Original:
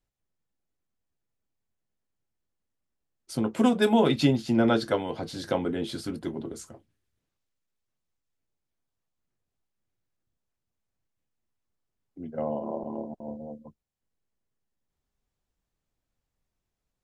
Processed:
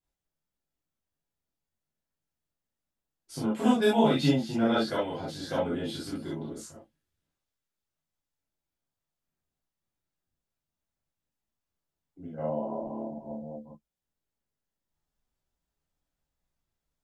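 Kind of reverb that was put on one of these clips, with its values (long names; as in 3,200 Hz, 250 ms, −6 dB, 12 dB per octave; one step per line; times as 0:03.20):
reverb whose tail is shaped and stops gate 90 ms flat, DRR −8 dB
level −10 dB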